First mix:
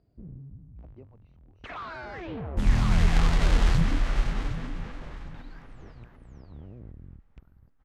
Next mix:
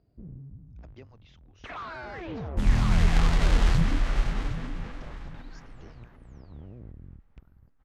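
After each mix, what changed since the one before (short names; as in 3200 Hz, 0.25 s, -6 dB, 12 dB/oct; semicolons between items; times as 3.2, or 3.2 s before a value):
speech: remove running mean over 26 samples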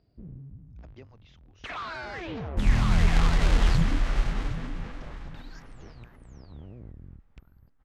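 first sound: add high shelf 2200 Hz +9.5 dB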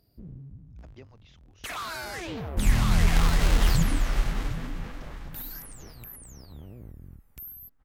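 first sound: remove LPF 3700 Hz 12 dB/oct; master: remove air absorption 61 m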